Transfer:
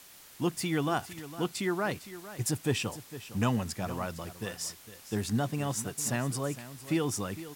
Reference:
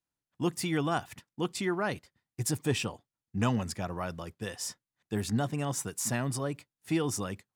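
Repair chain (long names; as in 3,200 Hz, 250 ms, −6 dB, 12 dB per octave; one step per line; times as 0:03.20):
broadband denoise 30 dB, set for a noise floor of −51 dBFS
echo removal 457 ms −14.5 dB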